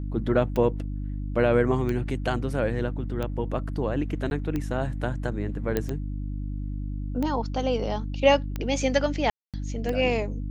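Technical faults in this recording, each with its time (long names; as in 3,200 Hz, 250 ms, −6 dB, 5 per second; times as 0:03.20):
mains hum 50 Hz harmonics 6 −31 dBFS
scratch tick 45 rpm −17 dBFS
0:04.30–0:04.31: drop-out 11 ms
0:05.77: click −12 dBFS
0:09.30–0:09.54: drop-out 237 ms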